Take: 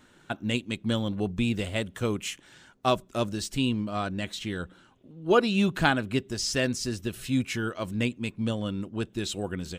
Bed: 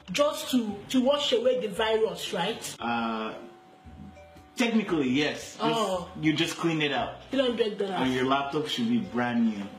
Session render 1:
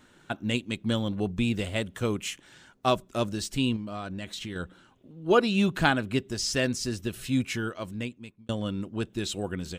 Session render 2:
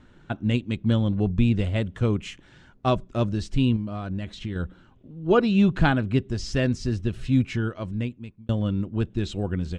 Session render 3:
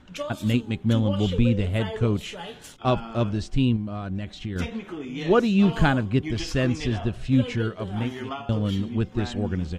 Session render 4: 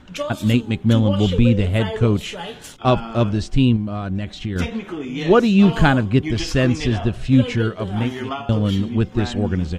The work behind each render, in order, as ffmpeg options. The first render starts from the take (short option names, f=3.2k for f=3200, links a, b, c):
-filter_complex "[0:a]asettb=1/sr,asplit=3[a][b][c];[a]atrim=end=3.764[d];[b]atrim=start=3.76:end=4.56,asetpts=PTS-STARTPTS,afade=t=in:d=0.004:c=qsin,afade=t=out:st=0.796:d=0.004:c=qsin,acompressor=threshold=-32dB:ratio=5:attack=3.2:release=140:knee=1:detection=peak[e];[c]atrim=start=4.556[f];[d][e]acrossfade=d=0.004:c1=hsin:c2=qsin[g];[g][f]acrossfade=d=0.004:c1=qsin:c2=hsin,asplit=2[h][i];[h]atrim=end=8.49,asetpts=PTS-STARTPTS,afade=t=out:st=7.52:d=0.97[j];[i]atrim=start=8.49,asetpts=PTS-STARTPTS,afade=t=in:d=0.004:c=hsin[k];[j][k]concat=n=2:v=0:a=1"
-af "lowpass=8.5k,aemphasis=mode=reproduction:type=bsi"
-filter_complex "[1:a]volume=-8.5dB[a];[0:a][a]amix=inputs=2:normalize=0"
-af "volume=6dB,alimiter=limit=-3dB:level=0:latency=1"